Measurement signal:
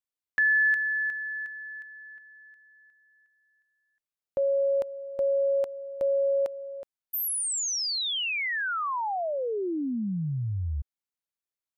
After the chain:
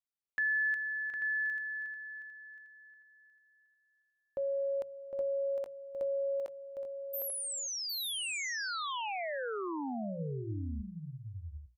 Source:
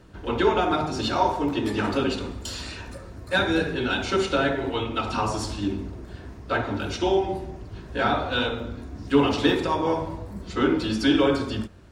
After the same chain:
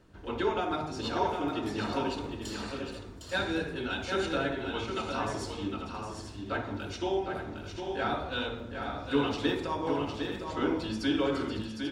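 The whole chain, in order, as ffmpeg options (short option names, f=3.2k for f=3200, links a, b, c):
-af "bandreject=f=60:t=h:w=6,bandreject=f=120:t=h:w=6,bandreject=f=180:t=h:w=6,aecho=1:1:758|840:0.473|0.316,volume=-8.5dB"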